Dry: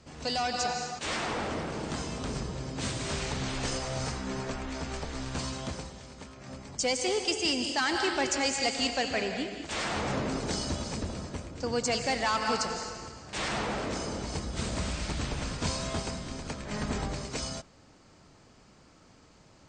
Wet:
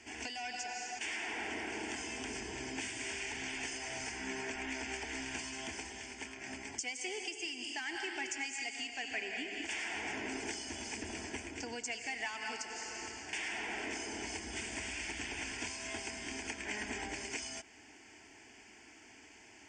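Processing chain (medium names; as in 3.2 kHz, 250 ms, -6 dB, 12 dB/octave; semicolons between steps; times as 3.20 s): frequency weighting D; compression 8:1, threshold -35 dBFS, peak gain reduction 19.5 dB; static phaser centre 810 Hz, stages 8; trim +2 dB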